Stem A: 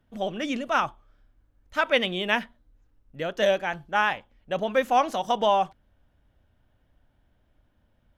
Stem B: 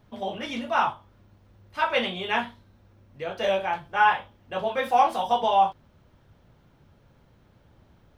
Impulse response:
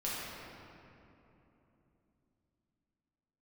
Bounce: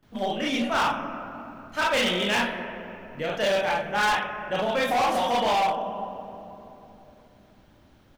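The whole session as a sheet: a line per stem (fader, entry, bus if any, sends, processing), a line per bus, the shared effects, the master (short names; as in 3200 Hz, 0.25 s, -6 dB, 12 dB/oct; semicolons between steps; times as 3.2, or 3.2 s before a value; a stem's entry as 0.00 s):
-4.5 dB, 0.00 s, send -4.5 dB, notch 3700 Hz, Q 14
+1.5 dB, 27 ms, no send, tilt shelf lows -5 dB, about 1100 Hz; bell 280 Hz +9 dB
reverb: on, RT60 3.2 s, pre-delay 5 ms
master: hard clip -20 dBFS, distortion -8 dB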